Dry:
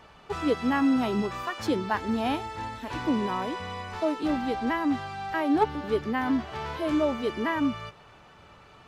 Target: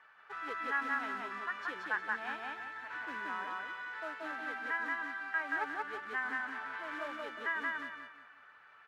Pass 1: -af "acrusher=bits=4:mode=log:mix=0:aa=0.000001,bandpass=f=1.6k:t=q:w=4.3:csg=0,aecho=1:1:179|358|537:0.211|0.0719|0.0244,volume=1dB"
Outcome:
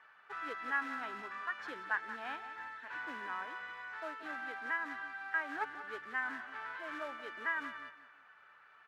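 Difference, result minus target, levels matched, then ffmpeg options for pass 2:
echo-to-direct -12 dB
-af "acrusher=bits=4:mode=log:mix=0:aa=0.000001,bandpass=f=1.6k:t=q:w=4.3:csg=0,aecho=1:1:179|358|537|716|895:0.841|0.286|0.0973|0.0331|0.0112,volume=1dB"

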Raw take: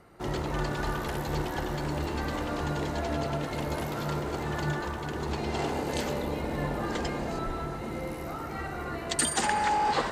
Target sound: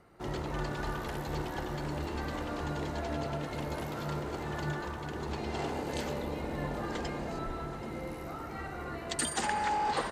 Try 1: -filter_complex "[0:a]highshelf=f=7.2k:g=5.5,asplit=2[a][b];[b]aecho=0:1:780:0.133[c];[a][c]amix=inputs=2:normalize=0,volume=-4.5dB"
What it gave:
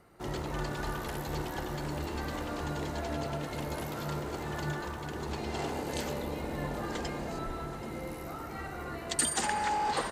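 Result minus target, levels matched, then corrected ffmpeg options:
8000 Hz band +4.0 dB
-filter_complex "[0:a]highshelf=f=7.2k:g=-3,asplit=2[a][b];[b]aecho=0:1:780:0.133[c];[a][c]amix=inputs=2:normalize=0,volume=-4.5dB"

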